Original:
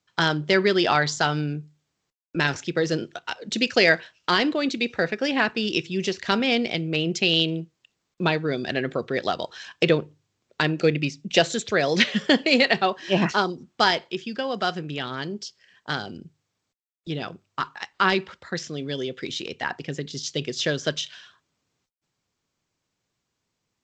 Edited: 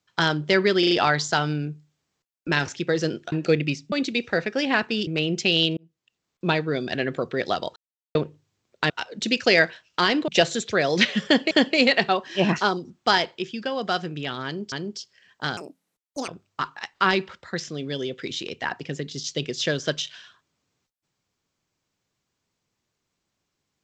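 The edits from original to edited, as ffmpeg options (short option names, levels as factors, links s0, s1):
-filter_complex "[0:a]asplit=16[s0][s1][s2][s3][s4][s5][s6][s7][s8][s9][s10][s11][s12][s13][s14][s15];[s0]atrim=end=0.832[s16];[s1]atrim=start=0.788:end=0.832[s17];[s2]atrim=start=0.788:end=0.832[s18];[s3]atrim=start=0.788:end=3.202[s19];[s4]atrim=start=10.668:end=11.272[s20];[s5]atrim=start=4.578:end=5.732[s21];[s6]atrim=start=6.838:end=7.54,asetpts=PTS-STARTPTS,afade=t=out:st=0.698:d=0.004:c=hsin[s22];[s7]atrim=start=7.54:end=9.53,asetpts=PTS-STARTPTS,afade=t=in:d=0.73,afade=t=out:st=1.986:d=0.004:c=hsin[s23];[s8]atrim=start=9.53:end=9.92,asetpts=PTS-STARTPTS,volume=0[s24];[s9]atrim=start=9.92:end=10.672,asetpts=PTS-STARTPTS,afade=t=in:d=0.004:c=hsin[s25];[s10]atrim=start=3.198:end=4.582[s26];[s11]atrim=start=11.268:end=12.502[s27];[s12]atrim=start=12.238:end=15.452[s28];[s13]atrim=start=15.178:end=16.034[s29];[s14]atrim=start=16.03:end=17.27,asetpts=PTS-STARTPTS,asetrate=77175,aresample=44100[s30];[s15]atrim=start=17.266[s31];[s16][s17]acrossfade=d=0.004:c1=hsin:c2=hsin[s32];[s32][s18]acrossfade=d=0.004:c1=hsin:c2=hsin[s33];[s33][s19]acrossfade=d=0.004:c1=hsin:c2=hsin[s34];[s34][s20]acrossfade=d=0.004:c1=hsin:c2=hsin[s35];[s35][s21]acrossfade=d=0.004:c1=hsin:c2=hsin[s36];[s22][s23][s24][s25]concat=n=4:v=0:a=1[s37];[s36][s37]acrossfade=d=0.004:c1=hsin:c2=hsin[s38];[s38][s26]acrossfade=d=0.004:c1=hsin:c2=hsin[s39];[s39][s27]acrossfade=d=0.004:c1=hsin:c2=hsin[s40];[s40][s28]acrossfade=d=0.004:c1=hsin:c2=hsin[s41];[s41][s29]acrossfade=d=0.004:c1=hsin:c2=hsin[s42];[s42][s30]acrossfade=d=0.004:c1=hsin:c2=hsin[s43];[s43][s31]acrossfade=d=0.004:c1=hsin:c2=hsin"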